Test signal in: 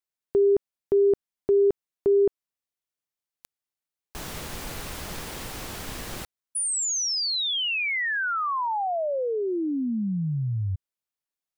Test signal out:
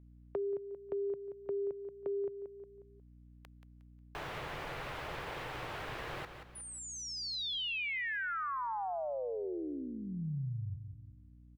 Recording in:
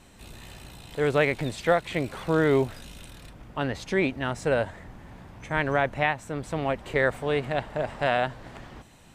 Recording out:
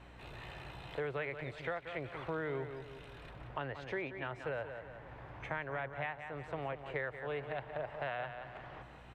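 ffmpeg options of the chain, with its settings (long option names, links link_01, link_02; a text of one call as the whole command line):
ffmpeg -i in.wav -filter_complex "[0:a]lowshelf=frequency=170:width_type=q:width=3:gain=8,acrossover=split=340|1200[link_01][link_02][link_03];[link_02]alimiter=limit=-23.5dB:level=0:latency=1[link_04];[link_01][link_04][link_03]amix=inputs=3:normalize=0,acrossover=split=270 3100:gain=0.1 1 0.0794[link_05][link_06][link_07];[link_05][link_06][link_07]amix=inputs=3:normalize=0,asplit=2[link_08][link_09];[link_09]aecho=0:1:180|360|540|720:0.316|0.104|0.0344|0.0114[link_10];[link_08][link_10]amix=inputs=2:normalize=0,aeval=exprs='val(0)+0.00141*(sin(2*PI*60*n/s)+sin(2*PI*2*60*n/s)/2+sin(2*PI*3*60*n/s)/3+sin(2*PI*4*60*n/s)/4+sin(2*PI*5*60*n/s)/5)':channel_layout=same,acompressor=threshold=-36dB:ratio=6:attack=14:release=675:knee=6:detection=rms,volume=1dB" out.wav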